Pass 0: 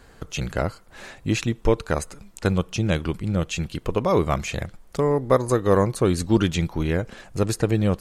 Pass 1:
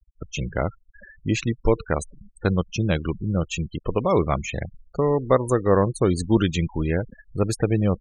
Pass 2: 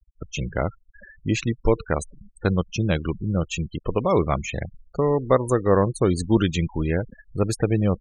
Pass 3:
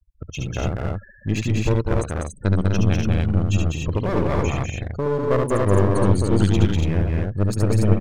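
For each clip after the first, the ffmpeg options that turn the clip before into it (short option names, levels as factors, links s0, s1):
-af "afftfilt=real='re*gte(hypot(re,im),0.0355)':imag='im*gte(hypot(re,im),0.0355)':win_size=1024:overlap=0.75"
-af anull
-filter_complex "[0:a]equalizer=f=95:t=o:w=0.69:g=11,aeval=exprs='clip(val(0),-1,0.0668)':c=same,asplit=2[s0][s1];[s1]aecho=0:1:71|198|248|285:0.631|0.668|0.473|0.668[s2];[s0][s2]amix=inputs=2:normalize=0,volume=0.708"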